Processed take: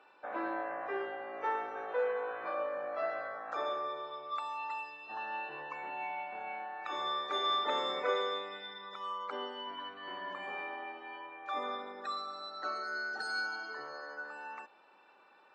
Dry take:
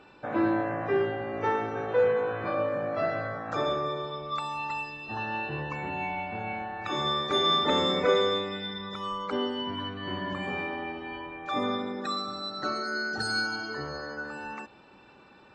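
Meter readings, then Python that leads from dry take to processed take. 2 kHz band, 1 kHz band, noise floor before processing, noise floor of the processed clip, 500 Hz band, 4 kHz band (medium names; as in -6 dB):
-6.0 dB, -5.0 dB, -55 dBFS, -62 dBFS, -9.5 dB, -9.5 dB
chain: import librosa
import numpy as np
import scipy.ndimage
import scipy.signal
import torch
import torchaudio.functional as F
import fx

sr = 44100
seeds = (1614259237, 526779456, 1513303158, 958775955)

y = scipy.signal.sosfilt(scipy.signal.butter(2, 680.0, 'highpass', fs=sr, output='sos'), x)
y = fx.high_shelf(y, sr, hz=2600.0, db=-11.0)
y = y * librosa.db_to_amplitude(-2.5)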